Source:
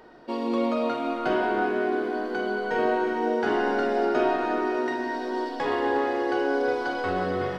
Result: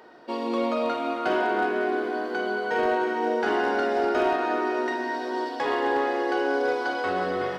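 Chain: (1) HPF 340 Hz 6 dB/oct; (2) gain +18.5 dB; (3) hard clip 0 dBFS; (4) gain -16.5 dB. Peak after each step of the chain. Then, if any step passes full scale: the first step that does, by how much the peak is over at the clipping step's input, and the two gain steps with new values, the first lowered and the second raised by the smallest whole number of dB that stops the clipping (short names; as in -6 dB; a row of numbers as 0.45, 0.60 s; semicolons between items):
-13.0, +5.5, 0.0, -16.5 dBFS; step 2, 5.5 dB; step 2 +12.5 dB, step 4 -10.5 dB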